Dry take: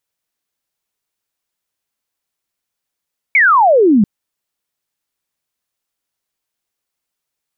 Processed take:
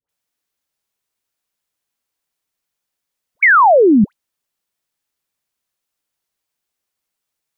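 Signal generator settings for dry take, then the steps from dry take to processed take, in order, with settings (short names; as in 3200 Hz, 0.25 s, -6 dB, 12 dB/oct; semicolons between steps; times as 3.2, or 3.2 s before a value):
laser zap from 2300 Hz, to 190 Hz, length 0.69 s sine, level -6.5 dB
dispersion highs, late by 91 ms, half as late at 1000 Hz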